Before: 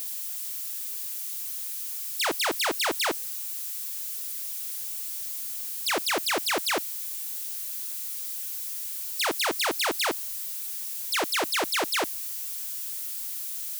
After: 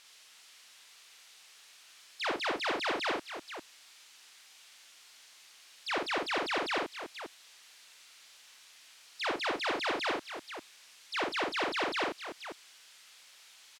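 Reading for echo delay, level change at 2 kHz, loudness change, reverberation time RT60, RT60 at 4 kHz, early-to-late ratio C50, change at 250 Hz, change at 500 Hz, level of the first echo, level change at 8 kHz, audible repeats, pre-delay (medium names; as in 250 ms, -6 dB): 46 ms, -4.5 dB, -6.0 dB, no reverb, no reverb, no reverb, -3.5 dB, -3.5 dB, -3.0 dB, -19.5 dB, 4, no reverb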